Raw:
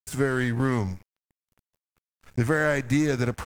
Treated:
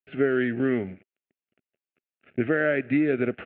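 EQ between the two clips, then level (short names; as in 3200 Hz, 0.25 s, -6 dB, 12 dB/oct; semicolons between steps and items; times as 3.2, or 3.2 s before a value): air absorption 230 m; speaker cabinet 230–3100 Hz, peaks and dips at 250 Hz +3 dB, 380 Hz +6 dB, 640 Hz +6 dB, 1400 Hz +4 dB, 2700 Hz +7 dB; fixed phaser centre 2400 Hz, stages 4; +1.5 dB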